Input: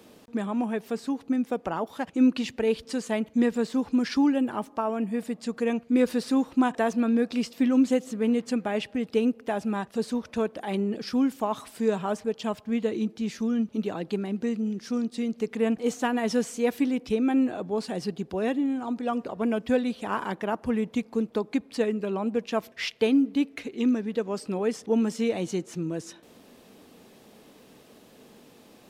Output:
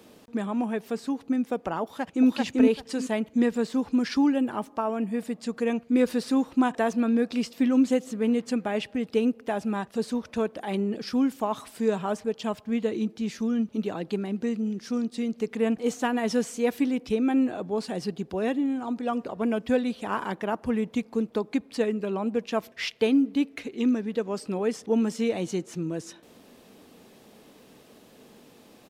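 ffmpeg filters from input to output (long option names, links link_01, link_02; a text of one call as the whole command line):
ffmpeg -i in.wav -filter_complex "[0:a]asplit=2[link_01][link_02];[link_02]afade=type=in:start_time=1.83:duration=0.01,afade=type=out:start_time=2.28:duration=0.01,aecho=0:1:390|780|1170:1|0.2|0.04[link_03];[link_01][link_03]amix=inputs=2:normalize=0" out.wav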